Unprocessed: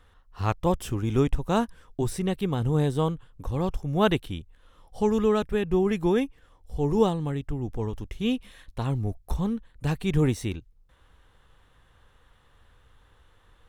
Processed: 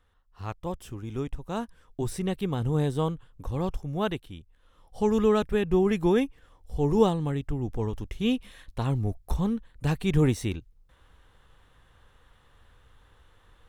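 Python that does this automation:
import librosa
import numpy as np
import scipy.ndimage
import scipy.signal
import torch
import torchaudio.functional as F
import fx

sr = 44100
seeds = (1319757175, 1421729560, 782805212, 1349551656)

y = fx.gain(x, sr, db=fx.line((1.42, -9.5), (2.14, -2.0), (3.75, -2.0), (4.25, -9.5), (5.19, 0.5)))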